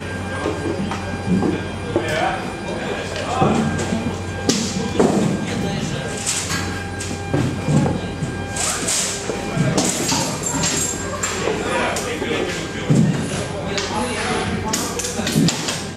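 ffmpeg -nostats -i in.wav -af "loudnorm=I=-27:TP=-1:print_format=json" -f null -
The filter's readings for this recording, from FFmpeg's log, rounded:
"input_i" : "-20.7",
"input_tp" : "-2.4",
"input_lra" : "1.3",
"input_thresh" : "-30.7",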